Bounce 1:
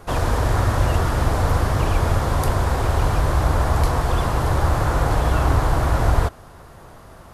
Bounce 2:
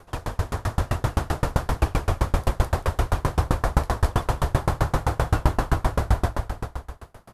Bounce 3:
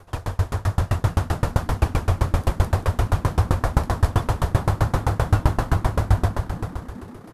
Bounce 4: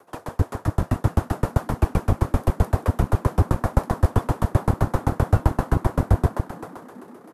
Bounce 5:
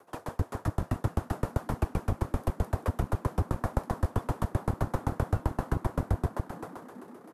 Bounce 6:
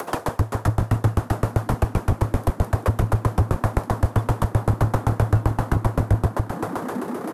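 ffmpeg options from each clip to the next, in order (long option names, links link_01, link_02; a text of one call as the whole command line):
ffmpeg -i in.wav -filter_complex "[0:a]asplit=2[link_01][link_02];[link_02]aecho=0:1:210|388.5|540.2|669.2|778.8:0.631|0.398|0.251|0.158|0.1[link_03];[link_01][link_03]amix=inputs=2:normalize=0,dynaudnorm=framelen=210:gausssize=9:maxgain=11.5dB,aeval=exprs='val(0)*pow(10,-32*if(lt(mod(7.7*n/s,1),2*abs(7.7)/1000),1-mod(7.7*n/s,1)/(2*abs(7.7)/1000),(mod(7.7*n/s,1)-2*abs(7.7)/1000)/(1-2*abs(7.7)/1000))/20)':channel_layout=same,volume=-1.5dB" out.wav
ffmpeg -i in.wav -filter_complex "[0:a]equalizer=frequency=97:width_type=o:width=0.43:gain=8,asplit=7[link_01][link_02][link_03][link_04][link_05][link_06][link_07];[link_02]adelay=422,afreqshift=73,volume=-19dB[link_08];[link_03]adelay=844,afreqshift=146,volume=-23dB[link_09];[link_04]adelay=1266,afreqshift=219,volume=-27dB[link_10];[link_05]adelay=1688,afreqshift=292,volume=-31dB[link_11];[link_06]adelay=2110,afreqshift=365,volume=-35.1dB[link_12];[link_07]adelay=2532,afreqshift=438,volume=-39.1dB[link_13];[link_01][link_08][link_09][link_10][link_11][link_12][link_13]amix=inputs=7:normalize=0" out.wav
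ffmpeg -i in.wav -filter_complex "[0:a]equalizer=frequency=3900:width_type=o:width=2.3:gain=-7.5,acrossover=split=200|460|2400[link_01][link_02][link_03][link_04];[link_01]acrusher=bits=2:mix=0:aa=0.5[link_05];[link_05][link_02][link_03][link_04]amix=inputs=4:normalize=0" out.wav
ffmpeg -i in.wav -af "acompressor=threshold=-20dB:ratio=3,volume=-4.5dB" out.wav
ffmpeg -i in.wav -af "acompressor=mode=upward:threshold=-27dB:ratio=2.5,adynamicequalizer=threshold=0.00398:dfrequency=110:dqfactor=7.4:tfrequency=110:tqfactor=7.4:attack=5:release=100:ratio=0.375:range=4:mode=boostabove:tftype=bell,aeval=exprs='0.237*sin(PI/2*1.58*val(0)/0.237)':channel_layout=same,volume=2dB" out.wav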